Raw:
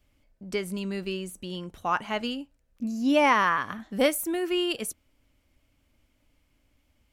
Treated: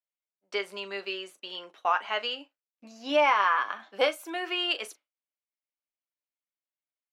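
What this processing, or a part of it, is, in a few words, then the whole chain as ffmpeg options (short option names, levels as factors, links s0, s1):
DJ mixer with the lows and highs turned down: -filter_complex "[0:a]asettb=1/sr,asplit=3[s0][s1][s2];[s0]atrim=end=3.194[s3];[s1]atrim=start=3.19:end=4.36,asetpts=PTS-STARTPTS,afade=t=in:d=0.004:c=qsin,afade=t=out:st=1.166:d=0.004:c=qsin,bandreject=f=1900:w=8.3[s4];[s2]atrim=start=4.356[s5];[s3][s4]acrossfade=d=0.004:c1=hsin:c2=qsin[s6];[s6][s5]acrossfade=d=0.004:c1=qsin:c2=hsin,acrossover=split=540 5000:gain=0.158 1 0.1[s7][s8][s9];[s7][s8][s9]amix=inputs=3:normalize=0,alimiter=limit=0.119:level=0:latency=1:release=322,highpass=f=290:w=0.5412,highpass=f=290:w=1.3066,agate=range=0.0224:threshold=0.00316:ratio=3:detection=peak,aecho=1:1:10|40:0.422|0.178,volume=1.58"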